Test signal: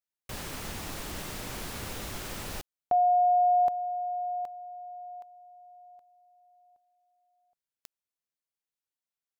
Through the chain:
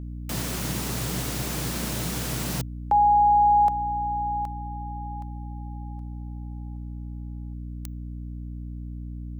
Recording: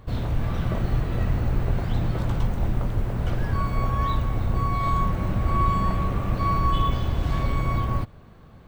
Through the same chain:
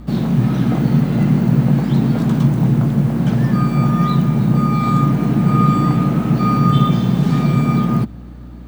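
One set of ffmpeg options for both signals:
ffmpeg -i in.wav -af "bass=frequency=250:gain=4,treble=frequency=4000:gain=5,afreqshift=110,aeval=exprs='val(0)+0.0126*(sin(2*PI*60*n/s)+sin(2*PI*2*60*n/s)/2+sin(2*PI*3*60*n/s)/3+sin(2*PI*4*60*n/s)/4+sin(2*PI*5*60*n/s)/5)':channel_layout=same,volume=4.5dB" out.wav

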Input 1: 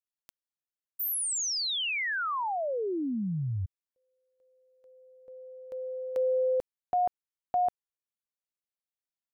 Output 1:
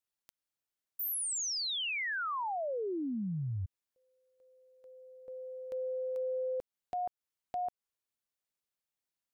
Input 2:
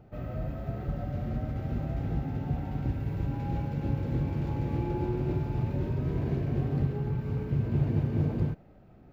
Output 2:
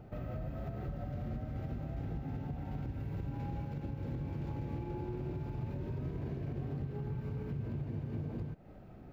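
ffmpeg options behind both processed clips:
ffmpeg -i in.wav -af "acompressor=threshold=-36dB:ratio=6:attack=0.23:release=212:knee=1:detection=rms,volume=2.5dB" out.wav

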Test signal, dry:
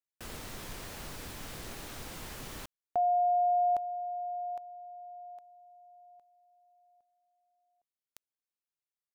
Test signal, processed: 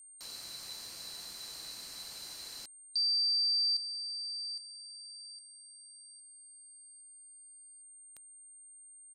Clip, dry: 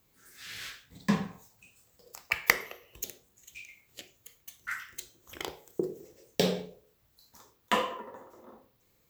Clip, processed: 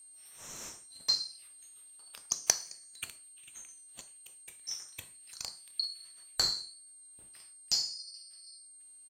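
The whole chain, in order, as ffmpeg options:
ffmpeg -i in.wav -af "afftfilt=real='real(if(lt(b,736),b+184*(1-2*mod(floor(b/184),2)),b),0)':imag='imag(if(lt(b,736),b+184*(1-2*mod(floor(b/184),2)),b),0)':win_size=2048:overlap=0.75,aresample=32000,aresample=44100,aeval=exprs='val(0)+0.00355*sin(2*PI*8700*n/s)':channel_layout=same,volume=-3dB" out.wav

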